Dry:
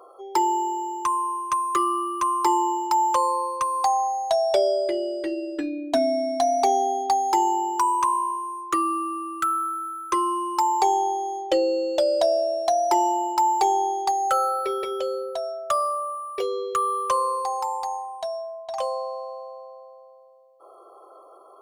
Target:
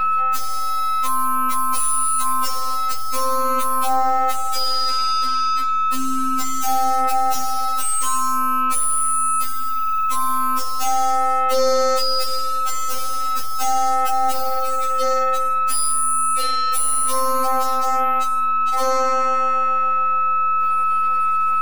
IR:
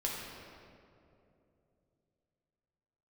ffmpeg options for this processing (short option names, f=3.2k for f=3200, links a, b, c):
-af "crystalizer=i=8.5:c=0,aeval=exprs='(mod(2.51*val(0)+1,2)-1)/2.51':c=same,aeval=exprs='val(0)+0.0708*sin(2*PI*1300*n/s)':c=same,aeval=exprs='(tanh(20*val(0)+0.7)-tanh(0.7))/20':c=same,afftfilt=real='re*3.46*eq(mod(b,12),0)':imag='im*3.46*eq(mod(b,12),0)':win_size=2048:overlap=0.75,volume=5dB"